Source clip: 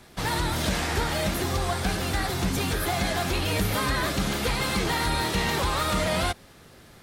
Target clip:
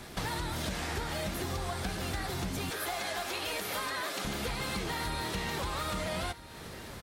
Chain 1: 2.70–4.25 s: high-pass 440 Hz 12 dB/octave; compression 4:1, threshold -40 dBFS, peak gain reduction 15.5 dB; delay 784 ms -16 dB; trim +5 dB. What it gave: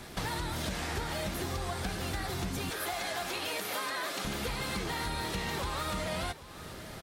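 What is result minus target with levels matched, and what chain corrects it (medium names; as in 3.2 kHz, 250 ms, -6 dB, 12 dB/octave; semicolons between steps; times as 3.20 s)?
echo 537 ms early
2.70–4.25 s: high-pass 440 Hz 12 dB/octave; compression 4:1, threshold -40 dBFS, peak gain reduction 15.5 dB; delay 1321 ms -16 dB; trim +5 dB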